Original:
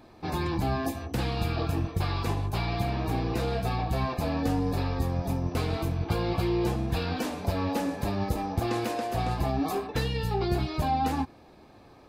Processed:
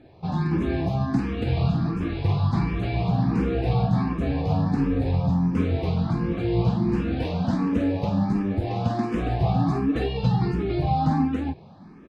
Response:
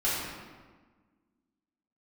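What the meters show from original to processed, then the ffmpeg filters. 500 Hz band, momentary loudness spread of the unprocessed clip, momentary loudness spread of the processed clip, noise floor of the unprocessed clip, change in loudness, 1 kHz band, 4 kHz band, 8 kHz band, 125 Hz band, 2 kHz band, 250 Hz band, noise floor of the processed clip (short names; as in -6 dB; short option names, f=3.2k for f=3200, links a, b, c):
+2.0 dB, 3 LU, 4 LU, -53 dBFS, +5.0 dB, +1.0 dB, -2.5 dB, under -10 dB, +6.5 dB, -0.5 dB, +7.5 dB, -46 dBFS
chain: -filter_complex "[0:a]lowpass=4.1k,equalizer=f=170:t=o:w=1.5:g=12,alimiter=limit=-12.5dB:level=0:latency=1:release=306,asplit=2[a][b];[b]aecho=0:1:49.56|282.8:0.562|1[c];[a][c]amix=inputs=2:normalize=0,asplit=2[d][e];[e]afreqshift=1.4[f];[d][f]amix=inputs=2:normalize=1"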